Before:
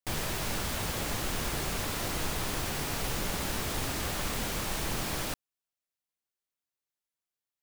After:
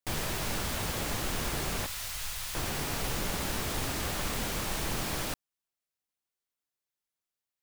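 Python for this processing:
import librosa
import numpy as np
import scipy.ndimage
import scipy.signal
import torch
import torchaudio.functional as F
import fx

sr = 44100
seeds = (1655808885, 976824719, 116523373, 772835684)

y = fx.tone_stack(x, sr, knobs='10-0-10', at=(1.86, 2.55))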